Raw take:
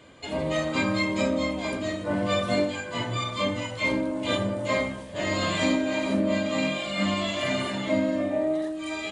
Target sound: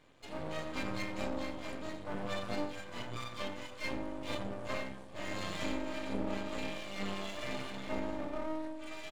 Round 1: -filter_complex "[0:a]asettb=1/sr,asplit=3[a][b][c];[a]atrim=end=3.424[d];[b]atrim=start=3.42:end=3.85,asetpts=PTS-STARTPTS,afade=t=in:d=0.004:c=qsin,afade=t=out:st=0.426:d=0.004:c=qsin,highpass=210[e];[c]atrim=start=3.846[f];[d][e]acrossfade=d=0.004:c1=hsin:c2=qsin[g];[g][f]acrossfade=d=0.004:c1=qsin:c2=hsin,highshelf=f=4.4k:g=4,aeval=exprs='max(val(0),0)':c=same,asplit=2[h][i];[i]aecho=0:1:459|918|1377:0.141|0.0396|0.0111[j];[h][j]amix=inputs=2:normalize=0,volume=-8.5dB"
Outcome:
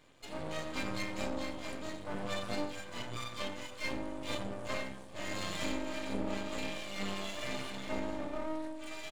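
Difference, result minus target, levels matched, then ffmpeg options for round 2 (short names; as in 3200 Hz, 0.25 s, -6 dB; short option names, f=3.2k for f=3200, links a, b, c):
8000 Hz band +4.0 dB
-filter_complex "[0:a]asettb=1/sr,asplit=3[a][b][c];[a]atrim=end=3.424[d];[b]atrim=start=3.42:end=3.85,asetpts=PTS-STARTPTS,afade=t=in:d=0.004:c=qsin,afade=t=out:st=0.426:d=0.004:c=qsin,highpass=210[e];[c]atrim=start=3.846[f];[d][e]acrossfade=d=0.004:c1=hsin:c2=qsin[g];[g][f]acrossfade=d=0.004:c1=qsin:c2=hsin,highshelf=f=4.4k:g=-4,aeval=exprs='max(val(0),0)':c=same,asplit=2[h][i];[i]aecho=0:1:459|918|1377:0.141|0.0396|0.0111[j];[h][j]amix=inputs=2:normalize=0,volume=-8.5dB"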